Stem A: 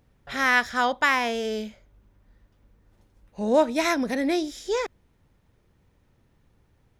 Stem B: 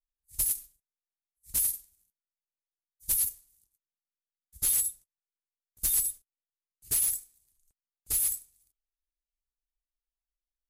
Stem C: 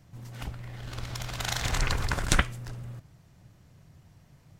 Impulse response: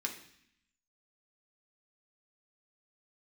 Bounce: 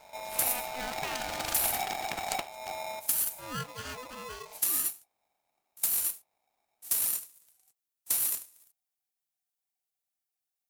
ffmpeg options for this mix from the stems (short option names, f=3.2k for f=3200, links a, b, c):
-filter_complex "[0:a]volume=-17.5dB[a];[1:a]bass=f=250:g=-13,treble=f=4k:g=3,acompressor=threshold=-26dB:ratio=6,volume=-1dB[b];[2:a]acompressor=threshold=-35dB:ratio=4,volume=2.5dB[c];[a][b]amix=inputs=2:normalize=0,highshelf=f=7.3k:g=8.5,acompressor=threshold=-25dB:ratio=6,volume=0dB[d];[c][d]amix=inputs=2:normalize=0,bandreject=f=50:t=h:w=6,bandreject=f=100:t=h:w=6,bandreject=f=150:t=h:w=6,bandreject=f=200:t=h:w=6,bandreject=f=250:t=h:w=6,bandreject=f=300:t=h:w=6,bandreject=f=350:t=h:w=6,aeval=exprs='val(0)*sgn(sin(2*PI*760*n/s))':c=same"